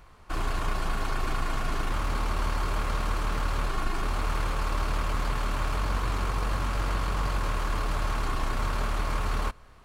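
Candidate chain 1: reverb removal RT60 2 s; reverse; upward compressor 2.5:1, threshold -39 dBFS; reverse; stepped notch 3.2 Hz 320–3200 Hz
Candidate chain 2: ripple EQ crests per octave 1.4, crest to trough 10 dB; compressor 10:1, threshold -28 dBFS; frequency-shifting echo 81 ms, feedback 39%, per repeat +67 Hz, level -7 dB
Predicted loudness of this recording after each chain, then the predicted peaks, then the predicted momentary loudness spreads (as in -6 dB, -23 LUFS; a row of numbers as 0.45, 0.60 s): -36.0, -33.5 LUFS; -18.0, -19.0 dBFS; 2, 1 LU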